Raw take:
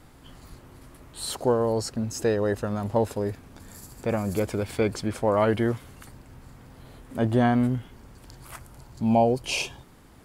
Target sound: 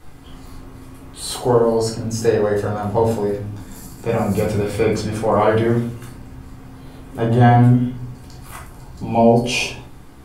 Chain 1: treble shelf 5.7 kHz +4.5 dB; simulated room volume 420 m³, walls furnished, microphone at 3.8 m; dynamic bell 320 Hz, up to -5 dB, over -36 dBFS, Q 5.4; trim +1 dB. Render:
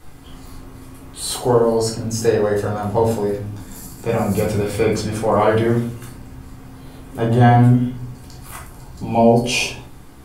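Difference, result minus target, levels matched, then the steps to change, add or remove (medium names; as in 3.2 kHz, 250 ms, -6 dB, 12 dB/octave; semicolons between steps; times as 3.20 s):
8 kHz band +3.0 dB
remove: treble shelf 5.7 kHz +4.5 dB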